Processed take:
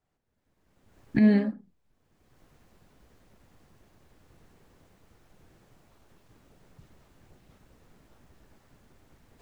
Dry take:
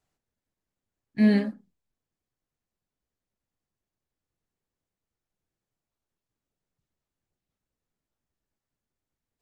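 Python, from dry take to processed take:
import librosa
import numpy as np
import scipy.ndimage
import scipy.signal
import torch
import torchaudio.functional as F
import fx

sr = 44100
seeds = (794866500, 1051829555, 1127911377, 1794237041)

y = fx.recorder_agc(x, sr, target_db=-19.0, rise_db_per_s=30.0, max_gain_db=30)
y = fx.high_shelf(y, sr, hz=3100.0, db=-11.0)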